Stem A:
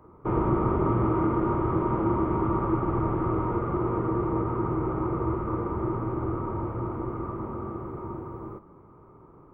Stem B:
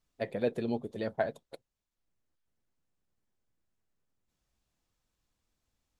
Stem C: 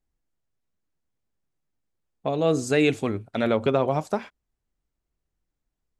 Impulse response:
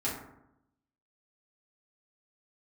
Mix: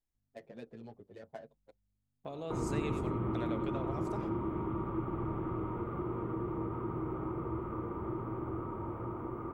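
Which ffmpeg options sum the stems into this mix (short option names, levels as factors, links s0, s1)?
-filter_complex "[0:a]lowshelf=f=230:g=-10.5,acrossover=split=300|3000[s0][s1][s2];[s1]acompressor=threshold=0.01:ratio=6[s3];[s0][s3][s2]amix=inputs=3:normalize=0,adelay=2250,volume=0.841[s4];[1:a]adynamicsmooth=sensitivity=7.5:basefreq=1200,aeval=exprs='val(0)+0.000447*(sin(2*PI*50*n/s)+sin(2*PI*2*50*n/s)/2+sin(2*PI*3*50*n/s)/3+sin(2*PI*4*50*n/s)/4+sin(2*PI*5*50*n/s)/5)':c=same,asplit=2[s5][s6];[s6]adelay=7.9,afreqshift=-1.1[s7];[s5][s7]amix=inputs=2:normalize=1,adelay=150,volume=0.316[s8];[2:a]volume=0.282,asplit=2[s9][s10];[s10]volume=0.112[s11];[s8][s9]amix=inputs=2:normalize=0,highshelf=f=6100:g=5.5,acompressor=threshold=0.00562:ratio=2,volume=1[s12];[s11]aecho=0:1:93:1[s13];[s4][s12][s13]amix=inputs=3:normalize=0"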